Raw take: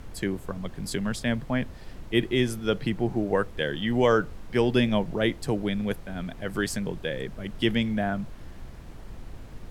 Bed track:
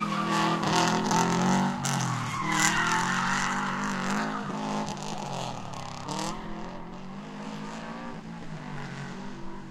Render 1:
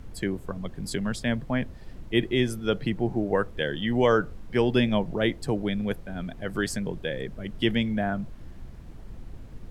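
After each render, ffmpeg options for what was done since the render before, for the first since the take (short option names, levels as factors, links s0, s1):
-af "afftdn=nr=6:nf=-44"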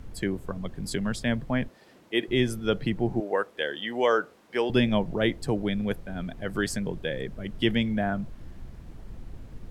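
-filter_complex "[0:a]asettb=1/sr,asplit=3[s0][s1][s2];[s0]atrim=end=1.684[s3];[s1]atrim=start=1.68:end=2.28,asetpts=PTS-STARTPTS,afade=t=in:d=0.004:c=qsin,afade=t=out:st=0.596:d=0.004:c=qsin,highpass=340[s4];[s2]atrim=start=2.276[s5];[s3][s4]acrossfade=d=0.004:c1=hsin:c2=qsin[s6];[s6][s5]acrossfade=d=0.004:c1=qsin:c2=hsin,asettb=1/sr,asplit=3[s7][s8][s9];[s7]atrim=end=3.204[s10];[s8]atrim=start=3.2:end=4.7,asetpts=PTS-STARTPTS,afade=t=in:d=0.004:c=qsin,afade=t=out:st=1.496:d=0.004:c=qsin,highpass=410[s11];[s9]atrim=start=4.696[s12];[s10][s11]acrossfade=d=0.004:c1=hsin:c2=qsin[s13];[s13][s12]acrossfade=d=0.004:c1=qsin:c2=hsin"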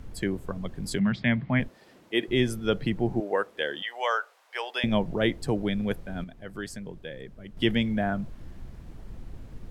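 -filter_complex "[0:a]asettb=1/sr,asplit=3[s0][s1][s2];[s0]atrim=end=0.994[s3];[s1]atrim=start=0.99:end=1.6,asetpts=PTS-STARTPTS,afade=t=in:d=0.004:c=qsin,afade=t=out:st=0.606:d=0.004:c=qsin,highpass=100,equalizer=f=130:t=q:w=4:g=7,equalizer=f=190:t=q:w=4:g=8,equalizer=f=480:t=q:w=4:g=-9,equalizer=f=2100:t=q:w=4:g=10,lowpass=f=3900:w=0.5412,lowpass=f=3900:w=1.3066[s4];[s2]atrim=start=1.596[s5];[s3][s4]acrossfade=d=0.004:c1=hsin:c2=qsin[s6];[s6][s5]acrossfade=d=0.004:c1=qsin:c2=hsin,asettb=1/sr,asplit=3[s7][s8][s9];[s7]atrim=end=3.824[s10];[s8]atrim=start=3.82:end=4.84,asetpts=PTS-STARTPTS,afade=t=in:d=0.004:c=qsin,afade=t=out:st=1.016:d=0.004:c=qsin,highpass=f=650:w=0.5412,highpass=f=650:w=1.3066[s11];[s9]atrim=start=4.836[s12];[s10][s11]acrossfade=d=0.004:c1=hsin:c2=qsin[s13];[s13][s12]acrossfade=d=0.004:c1=qsin:c2=hsin,asplit=3[s14][s15][s16];[s14]atrim=end=6.242[s17];[s15]atrim=start=6.238:end=7.572,asetpts=PTS-STARTPTS,volume=0.376[s18];[s16]atrim=start=7.568[s19];[s17][s18]acrossfade=d=0.004:c1=hsin:c2=hsin[s20];[s20][s19]acrossfade=d=0.004:c1=hsin:c2=hsin"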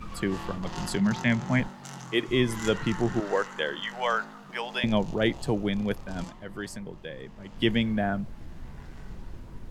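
-filter_complex "[1:a]volume=0.2[s0];[0:a][s0]amix=inputs=2:normalize=0"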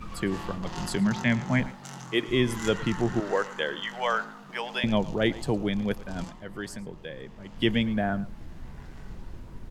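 -af "aecho=1:1:111:0.112"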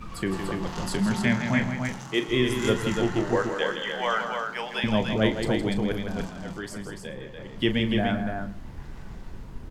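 -filter_complex "[0:a]asplit=2[s0][s1];[s1]adelay=37,volume=0.282[s2];[s0][s2]amix=inputs=2:normalize=0,aecho=1:1:163.3|291.5:0.398|0.562"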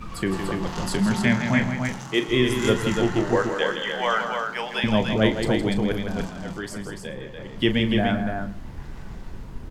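-af "volume=1.41"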